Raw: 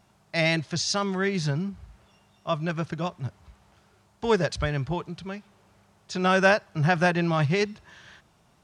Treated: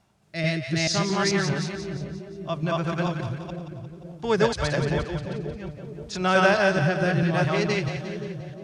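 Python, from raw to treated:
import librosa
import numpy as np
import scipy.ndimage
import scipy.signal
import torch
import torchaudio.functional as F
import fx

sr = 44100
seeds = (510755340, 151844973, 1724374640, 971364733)

y = fx.reverse_delay(x, sr, ms=219, wet_db=0.0)
y = fx.rotary(y, sr, hz=0.6)
y = fx.echo_split(y, sr, split_hz=590.0, low_ms=524, high_ms=176, feedback_pct=52, wet_db=-8.5)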